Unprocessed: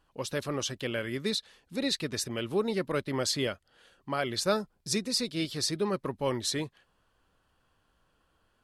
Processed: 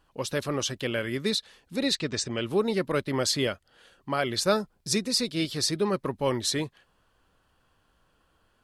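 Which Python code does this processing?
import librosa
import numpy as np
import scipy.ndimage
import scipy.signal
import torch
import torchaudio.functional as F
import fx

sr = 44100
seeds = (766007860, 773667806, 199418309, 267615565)

y = fx.steep_lowpass(x, sr, hz=8200.0, slope=48, at=(1.95, 2.43))
y = y * 10.0 ** (3.5 / 20.0)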